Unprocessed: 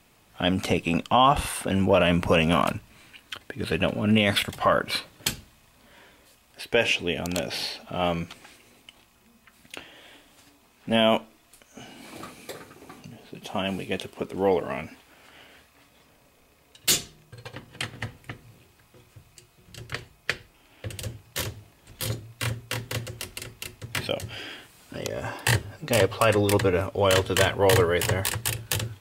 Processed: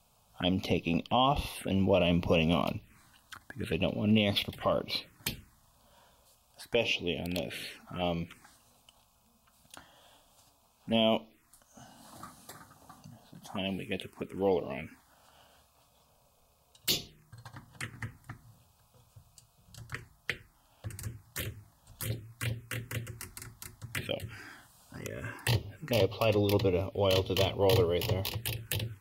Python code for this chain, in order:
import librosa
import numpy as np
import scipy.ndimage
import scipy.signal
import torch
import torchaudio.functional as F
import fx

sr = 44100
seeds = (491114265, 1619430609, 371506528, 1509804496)

y = fx.env_phaser(x, sr, low_hz=320.0, high_hz=1600.0, full_db=-23.0)
y = F.gain(torch.from_numpy(y), -4.5).numpy()